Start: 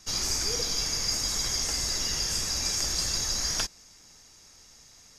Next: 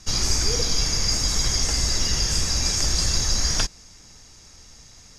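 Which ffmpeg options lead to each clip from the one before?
-af "lowpass=9700,lowshelf=f=180:g=9.5,volume=1.78"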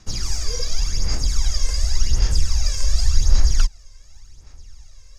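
-af "asubboost=boost=5:cutoff=82,aphaser=in_gain=1:out_gain=1:delay=1.9:decay=0.64:speed=0.89:type=sinusoidal,volume=0.376"

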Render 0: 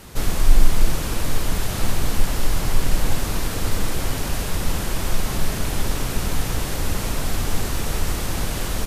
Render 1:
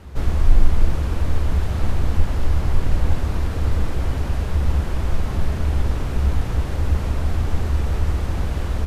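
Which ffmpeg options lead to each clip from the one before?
-af "lowpass=f=1500:p=1,equalizer=f=71:t=o:w=0.53:g=15,volume=0.891"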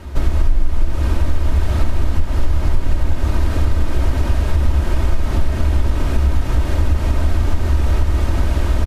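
-af "acompressor=threshold=0.126:ratio=6,aecho=1:1:3.2:0.44,volume=2.11"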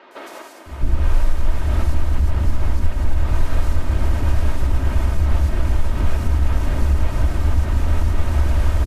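-filter_complex "[0:a]acrossover=split=370|4100[s0][s1][s2];[s2]adelay=110[s3];[s0]adelay=660[s4];[s4][s1][s3]amix=inputs=3:normalize=0,volume=0.841"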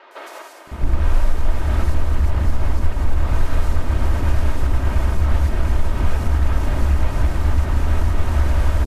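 -filter_complex "[0:a]acrossover=split=320|1600[s0][s1][s2];[s0]acrusher=bits=4:mix=0:aa=0.5[s3];[s1]crystalizer=i=4:c=0[s4];[s3][s4][s2]amix=inputs=3:normalize=0"

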